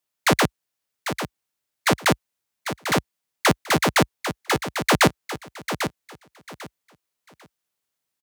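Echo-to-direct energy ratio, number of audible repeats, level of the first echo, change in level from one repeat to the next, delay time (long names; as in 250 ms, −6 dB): −9.5 dB, 2, −9.5 dB, −13.0 dB, 796 ms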